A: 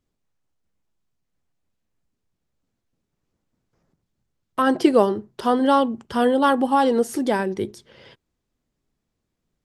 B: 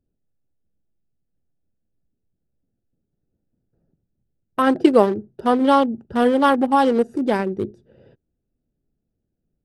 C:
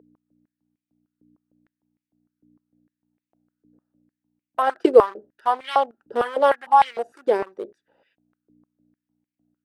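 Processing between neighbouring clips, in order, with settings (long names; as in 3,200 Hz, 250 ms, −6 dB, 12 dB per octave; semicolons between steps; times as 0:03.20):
adaptive Wiener filter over 41 samples; level +2.5 dB
mains hum 60 Hz, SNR 15 dB; high-pass on a step sequencer 6.6 Hz 440–2,200 Hz; level −6.5 dB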